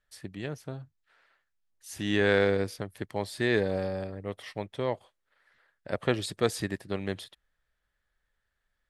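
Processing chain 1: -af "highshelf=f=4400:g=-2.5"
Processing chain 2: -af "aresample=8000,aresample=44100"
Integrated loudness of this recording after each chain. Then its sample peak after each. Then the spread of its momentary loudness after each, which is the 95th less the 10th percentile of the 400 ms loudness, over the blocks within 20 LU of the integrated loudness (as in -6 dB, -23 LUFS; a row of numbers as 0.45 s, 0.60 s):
-31.0 LUFS, -31.0 LUFS; -10.0 dBFS, -10.0 dBFS; 16 LU, 15 LU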